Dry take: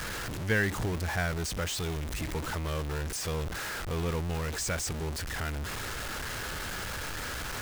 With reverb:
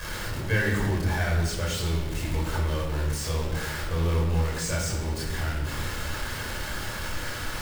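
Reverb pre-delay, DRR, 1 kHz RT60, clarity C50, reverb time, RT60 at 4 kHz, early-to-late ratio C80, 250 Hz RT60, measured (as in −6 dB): 25 ms, −4.0 dB, 1.0 s, 3.0 dB, 1.1 s, 0.90 s, 5.5 dB, 1.8 s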